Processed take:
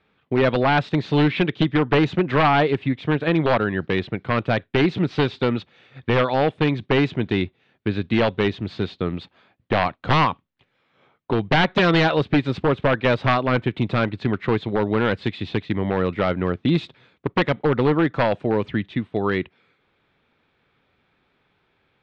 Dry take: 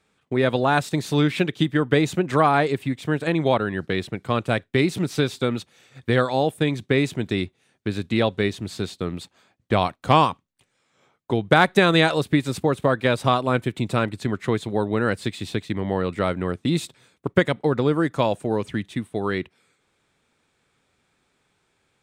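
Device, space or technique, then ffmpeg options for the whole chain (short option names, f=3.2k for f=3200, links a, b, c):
synthesiser wavefolder: -af "aeval=exprs='0.211*(abs(mod(val(0)/0.211+3,4)-2)-1)':c=same,lowpass=f=3.7k:w=0.5412,lowpass=f=3.7k:w=1.3066,volume=3dB"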